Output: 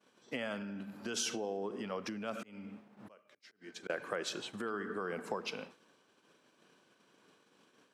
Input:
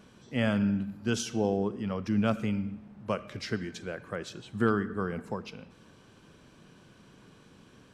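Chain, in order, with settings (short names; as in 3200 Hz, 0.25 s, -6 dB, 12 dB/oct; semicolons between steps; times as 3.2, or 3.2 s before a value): limiter -24.5 dBFS, peak gain reduction 10.5 dB; 2.33–3.9 auto swell 0.608 s; expander -45 dBFS; compressor 5:1, threshold -38 dBFS, peak gain reduction 9.5 dB; HPF 350 Hz 12 dB/oct; gain +7 dB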